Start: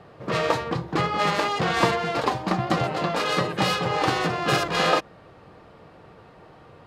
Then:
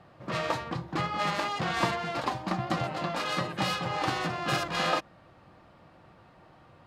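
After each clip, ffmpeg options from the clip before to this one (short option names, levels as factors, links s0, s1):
-af "equalizer=f=440:t=o:w=0.24:g=-12,volume=0.501"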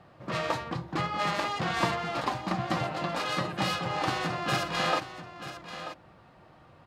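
-af "aecho=1:1:937:0.251"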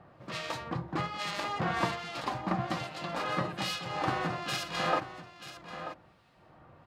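-filter_complex "[0:a]acrossover=split=2200[s0][s1];[s0]aeval=exprs='val(0)*(1-0.7/2+0.7/2*cos(2*PI*1.2*n/s))':c=same[s2];[s1]aeval=exprs='val(0)*(1-0.7/2-0.7/2*cos(2*PI*1.2*n/s))':c=same[s3];[s2][s3]amix=inputs=2:normalize=0"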